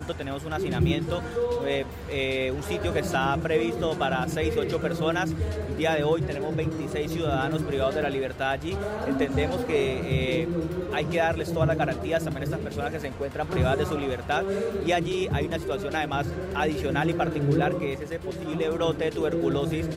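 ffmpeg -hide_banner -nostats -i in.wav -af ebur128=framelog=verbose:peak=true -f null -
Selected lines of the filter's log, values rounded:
Integrated loudness:
  I:         -27.1 LUFS
  Threshold: -37.0 LUFS
Loudness range:
  LRA:         1.3 LU
  Threshold: -47.0 LUFS
  LRA low:   -27.6 LUFS
  LRA high:  -26.3 LUFS
True peak:
  Peak:      -11.6 dBFS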